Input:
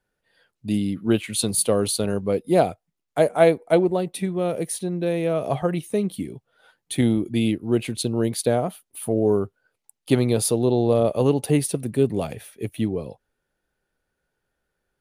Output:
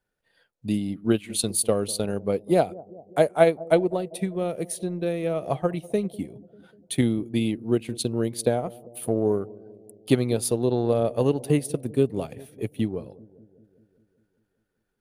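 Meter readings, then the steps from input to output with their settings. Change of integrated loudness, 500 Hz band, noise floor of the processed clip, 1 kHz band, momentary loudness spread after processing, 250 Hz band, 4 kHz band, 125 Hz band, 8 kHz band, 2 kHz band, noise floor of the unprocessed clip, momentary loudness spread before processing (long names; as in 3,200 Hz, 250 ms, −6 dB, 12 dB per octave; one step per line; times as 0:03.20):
−2.5 dB, −2.5 dB, −76 dBFS, −2.5 dB, 12 LU, −3.0 dB, −3.0 dB, −3.0 dB, −3.5 dB, −2.5 dB, −80 dBFS, 11 LU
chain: transient designer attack +4 dB, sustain −6 dB
bucket-brigade delay 197 ms, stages 1,024, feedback 63%, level −20.5 dB
level −4 dB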